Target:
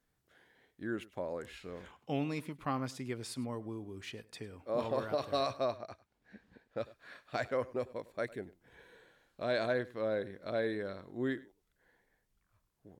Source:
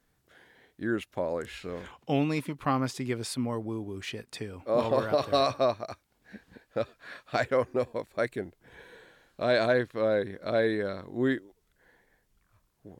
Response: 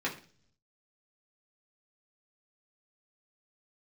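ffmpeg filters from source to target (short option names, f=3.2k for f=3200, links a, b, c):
-filter_complex "[0:a]asettb=1/sr,asplit=3[a][b][c];[a]atrim=end=5.774[d];[b]atrim=start=5.77:end=6.78,asetpts=PTS-STARTPTS,afade=t=in:d=0.004:c=qsin,afade=t=out:st=1.006:d=0.004:c=qsin,highshelf=f=7.2k:g=-11[e];[c]atrim=start=6.776[f];[d][e]acrossfade=d=0.004:c1=hsin:c2=qsin[g];[g][f]acrossfade=d=0.004:c1=qsin:c2=hsin,aecho=1:1:101:0.1,volume=-8dB"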